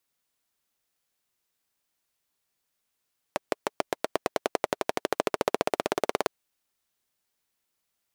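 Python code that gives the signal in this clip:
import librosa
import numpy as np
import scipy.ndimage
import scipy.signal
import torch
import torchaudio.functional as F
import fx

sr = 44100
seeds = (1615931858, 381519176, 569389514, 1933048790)

y = fx.engine_single_rev(sr, seeds[0], length_s=2.91, rpm=700, resonances_hz=(430.0, 610.0), end_rpm=2200)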